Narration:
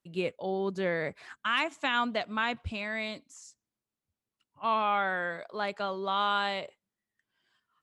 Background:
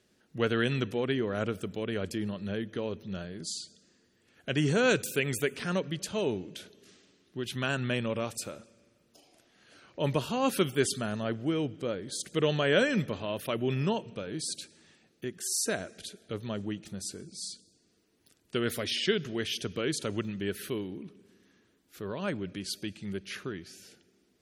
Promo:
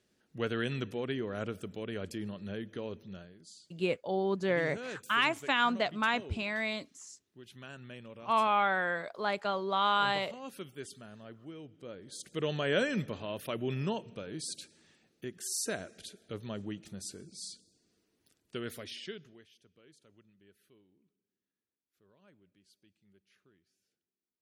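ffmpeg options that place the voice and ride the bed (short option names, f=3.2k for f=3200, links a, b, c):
-filter_complex "[0:a]adelay=3650,volume=0.5dB[a];[1:a]volume=7dB,afade=t=out:st=2.96:d=0.43:silence=0.266073,afade=t=in:st=11.67:d=1.03:silence=0.237137,afade=t=out:st=18:d=1.47:silence=0.0501187[b];[a][b]amix=inputs=2:normalize=0"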